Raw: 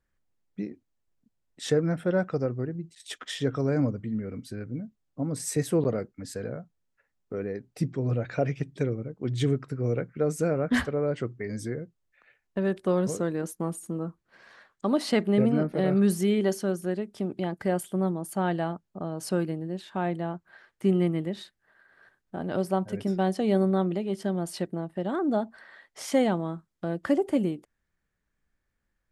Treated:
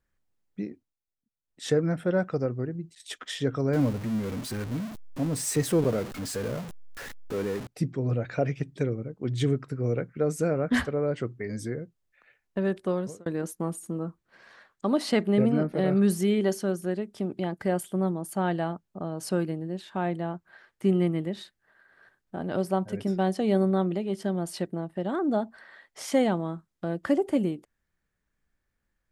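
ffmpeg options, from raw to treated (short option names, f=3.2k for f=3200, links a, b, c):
-filter_complex "[0:a]asettb=1/sr,asplit=3[a][b][c];[a]atrim=end=3.734[d];[b]atrim=start=3.73:end=7.67,asetpts=PTS-STARTPTS,afade=t=in:d=0.004:c=qsin,afade=t=out:st=3.936:d=0.004:c=qsin,aeval=exprs='val(0)+0.5*0.0211*sgn(val(0))':c=same[e];[c]atrim=start=7.666[f];[d][e]acrossfade=d=0.004:c1=hsin:c2=qsin[g];[g][f]acrossfade=d=0.004:c1=qsin:c2=hsin,asplit=4[h][i][j][k];[h]atrim=end=0.97,asetpts=PTS-STARTPTS,afade=t=out:st=0.7:d=0.27:silence=0.16788[l];[i]atrim=start=0.97:end=1.43,asetpts=PTS-STARTPTS,volume=-15.5dB[m];[j]atrim=start=1.43:end=13.26,asetpts=PTS-STARTPTS,afade=t=in:d=0.27:silence=0.16788,afade=t=out:st=11.16:d=0.67:c=qsin[n];[k]atrim=start=13.26,asetpts=PTS-STARTPTS,afade=t=in:d=0.004:c=hsin[o];[l][m][n][o]concat=n=4:v=0:a=1"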